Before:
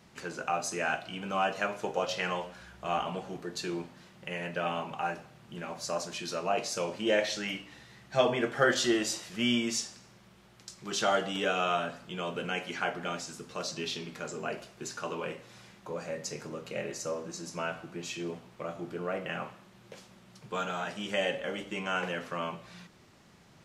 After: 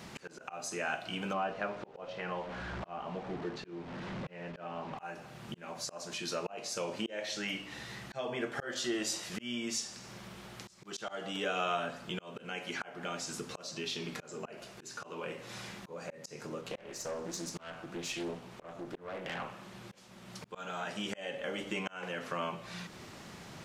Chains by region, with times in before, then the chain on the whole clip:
1.33–4.98 delta modulation 64 kbps, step -36.5 dBFS + tape spacing loss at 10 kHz 33 dB
16.61–19.97 tube stage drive 31 dB, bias 0.5 + Doppler distortion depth 0.39 ms
whole clip: low shelf 150 Hz -4 dB; auto swell 0.568 s; compressor 2:1, threshold -53 dBFS; gain +11 dB

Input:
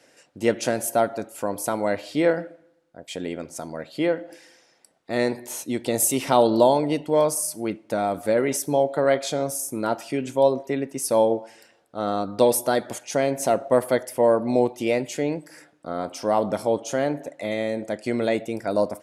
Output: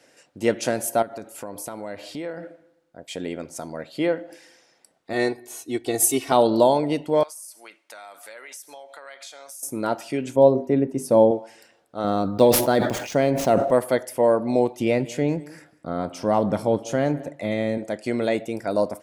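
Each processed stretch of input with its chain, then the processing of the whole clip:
1.02–2.43 compressor 3:1, threshold -32 dBFS + mismatched tape noise reduction encoder only
5.13–6.32 comb 2.7 ms, depth 89% + upward expander, over -32 dBFS
7.23–9.63 HPF 1300 Hz + compressor 5:1, threshold -38 dBFS
10.36–11.31 tilt shelf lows +8.5 dB, about 900 Hz + notches 50/100/150/200/250/300/350/400/450 Hz
12.04–13.71 median filter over 5 samples + low shelf 290 Hz +7 dB + sustainer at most 58 dB/s
14.8–17.78 tone controls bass +8 dB, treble -4 dB + echo 0.192 s -20.5 dB
whole clip: dry

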